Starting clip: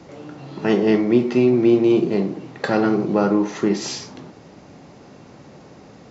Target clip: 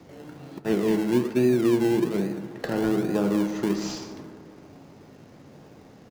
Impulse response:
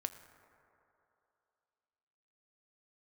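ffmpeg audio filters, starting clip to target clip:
-filter_complex "[0:a]aecho=1:1:147:0.178,asplit=3[link_01][link_02][link_03];[link_01]afade=type=out:start_time=0.58:duration=0.02[link_04];[link_02]agate=range=-33dB:threshold=-17dB:ratio=3:detection=peak,afade=type=in:start_time=0.58:duration=0.02,afade=type=out:start_time=2.19:duration=0.02[link_05];[link_03]afade=type=in:start_time=2.19:duration=0.02[link_06];[link_04][link_05][link_06]amix=inputs=3:normalize=0,asplit=2[link_07][link_08];[link_08]acrusher=samples=29:mix=1:aa=0.000001:lfo=1:lforange=17.4:lforate=1.2,volume=-5dB[link_09];[link_07][link_09]amix=inputs=2:normalize=0,acrossover=split=470[link_10][link_11];[link_11]acompressor=threshold=-22dB:ratio=4[link_12];[link_10][link_12]amix=inputs=2:normalize=0[link_13];[1:a]atrim=start_sample=2205[link_14];[link_13][link_14]afir=irnorm=-1:irlink=0,volume=-7.5dB"

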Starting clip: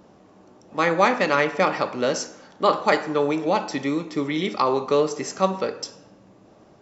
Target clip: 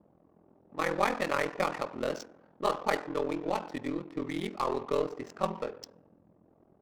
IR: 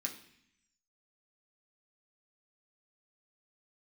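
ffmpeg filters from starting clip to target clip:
-af "adynamicsmooth=sensitivity=4.5:basefreq=870,aeval=exprs='0.668*(cos(1*acos(clip(val(0)/0.668,-1,1)))-cos(1*PI/2))+0.0188*(cos(8*acos(clip(val(0)/0.668,-1,1)))-cos(8*PI/2))':channel_layout=same,aeval=exprs='val(0)*sin(2*PI*21*n/s)':channel_layout=same,volume=-7dB"

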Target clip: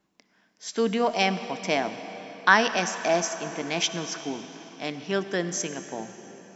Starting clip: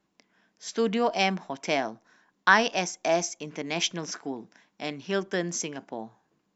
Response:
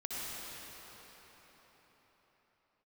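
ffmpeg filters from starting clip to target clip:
-filter_complex "[0:a]asplit=2[link_01][link_02];[1:a]atrim=start_sample=2205,highshelf=frequency=6600:gain=5.5[link_03];[link_02][link_03]afir=irnorm=-1:irlink=0,volume=-12dB[link_04];[link_01][link_04]amix=inputs=2:normalize=0"

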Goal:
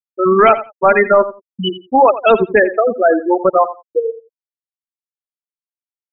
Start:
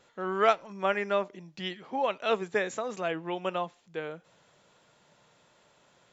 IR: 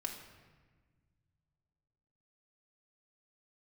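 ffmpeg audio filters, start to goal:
-filter_complex "[0:a]afftfilt=real='re*gte(hypot(re,im),0.1)':imag='im*gte(hypot(re,im),0.1)':win_size=1024:overlap=0.75,apsyclip=24dB,asplit=2[link_01][link_02];[link_02]aecho=0:1:86|172:0.2|0.0319[link_03];[link_01][link_03]amix=inputs=2:normalize=0,volume=-3dB"

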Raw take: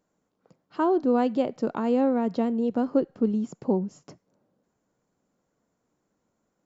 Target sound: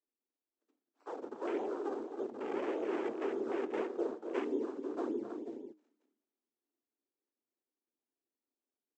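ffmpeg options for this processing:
ffmpeg -i in.wav -filter_complex "[0:a]bandreject=frequency=360:width=12,aecho=1:1:1.2:0.38,asetrate=32667,aresample=44100,acrossover=split=210|3000[link_01][link_02][link_03];[link_02]acompressor=threshold=-45dB:ratio=2[link_04];[link_01][link_04][link_03]amix=inputs=3:normalize=0,equalizer=frequency=95:width_type=o:width=0.22:gain=14.5,acontrast=20,aresample=16000,acrusher=samples=23:mix=1:aa=0.000001:lfo=1:lforange=36.8:lforate=1.7,aresample=44100,afftfilt=real='hypot(re,im)*cos(2*PI*random(0))':imag='hypot(re,im)*sin(2*PI*random(1))':win_size=512:overlap=0.75,afreqshift=210,aecho=1:1:262|318|487:0.299|0.355|0.299,afwtdn=0.0141,flanger=delay=6.6:depth=9.3:regen=-84:speed=0.36:shape=triangular,volume=-3.5dB" out.wav

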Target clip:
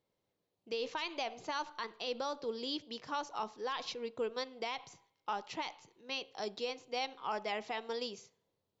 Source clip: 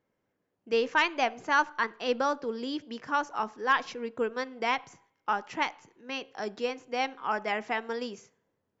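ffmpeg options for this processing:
ffmpeg -i in.wav -af "equalizer=frequency=250:width_type=o:width=0.67:gain=-6,equalizer=frequency=1600:width_type=o:width=0.67:gain=-9,equalizer=frequency=4000:width_type=o:width=0.67:gain=10,alimiter=limit=-23.5dB:level=0:latency=1:release=60,volume=-3.5dB" out.wav

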